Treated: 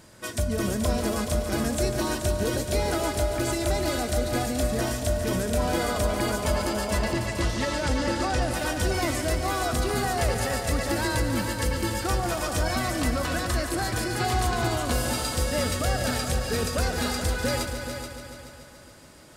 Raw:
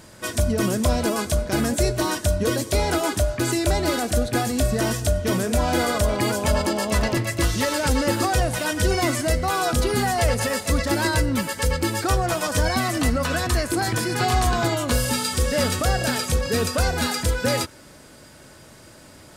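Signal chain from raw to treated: 6.99–8.42 s: low-pass 7 kHz 12 dB/octave; on a send: multi-head delay 143 ms, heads all three, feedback 51%, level -11.5 dB; on the sum: trim -5.5 dB

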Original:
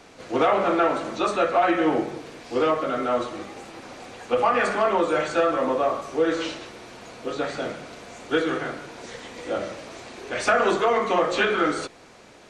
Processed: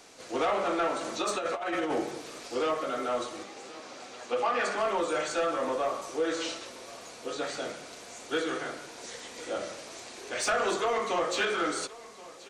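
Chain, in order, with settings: tone controls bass -7 dB, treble +10 dB; 1.01–2.48 s: compressor with a negative ratio -23 dBFS, ratio -0.5; saturation -14.5 dBFS, distortion -18 dB; 3.43–4.78 s: band-pass 130–6700 Hz; delay 1077 ms -19.5 dB; trim -5.5 dB

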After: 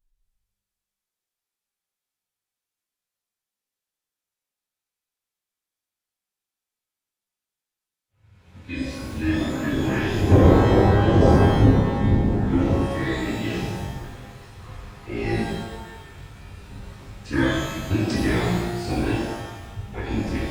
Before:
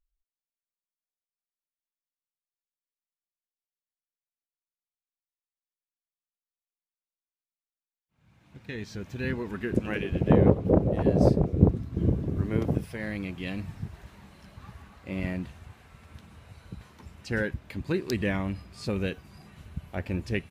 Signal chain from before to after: formant-preserving pitch shift -8.5 st; harmonic-percussive split harmonic +7 dB; pitch-shifted reverb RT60 1.1 s, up +12 st, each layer -8 dB, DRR -7 dB; trim -3.5 dB

